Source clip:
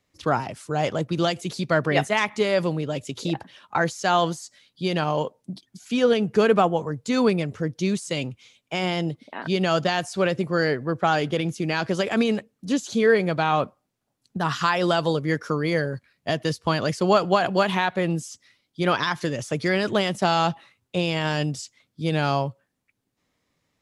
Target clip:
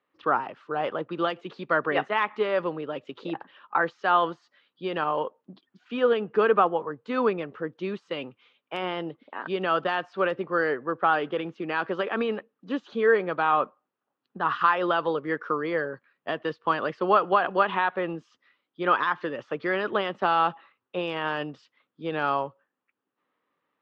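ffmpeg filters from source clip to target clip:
-af "highpass=380,equalizer=f=660:t=q:w=4:g=-6,equalizer=f=1.2k:t=q:w=4:g=5,equalizer=f=2.2k:t=q:w=4:g=-8,lowpass=f=2.7k:w=0.5412,lowpass=f=2.7k:w=1.3066" -ar 48000 -c:a aac -b:a 96k

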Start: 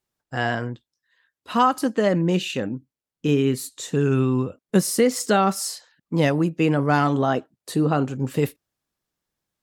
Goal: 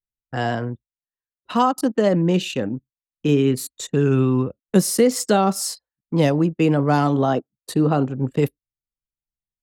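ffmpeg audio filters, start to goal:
-filter_complex "[0:a]anlmdn=6.31,acrossover=split=280|1200|2800[a][b][c][d];[c]acompressor=threshold=-41dB:ratio=6[e];[a][b][e][d]amix=inputs=4:normalize=0,volume=2.5dB"

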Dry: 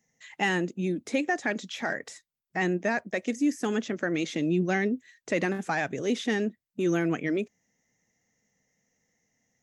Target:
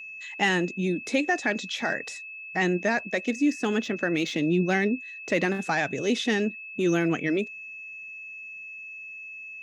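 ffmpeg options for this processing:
-filter_complex "[0:a]equalizer=f=3.9k:w=1.1:g=4.5,asettb=1/sr,asplit=3[a][b][c];[a]atrim=end=3.234[d];[b]atrim=start=3.23:end=5.47,asetpts=PTS-STARTPTS,afade=t=in:d=0.004:c=qsin,afade=t=out:st=2.236:d=0.004:c=qsin,adynamicsmooth=sensitivity=5.5:basefreq=7.1k[e];[c]atrim=start=5.466[f];[d][e]acrossfade=d=0.004:c1=hsin:c2=qsin[g];[g][f]acrossfade=d=0.004:c1=qsin:c2=hsin,aeval=exprs='val(0)+0.01*sin(2*PI*2600*n/s)':c=same,volume=2dB"

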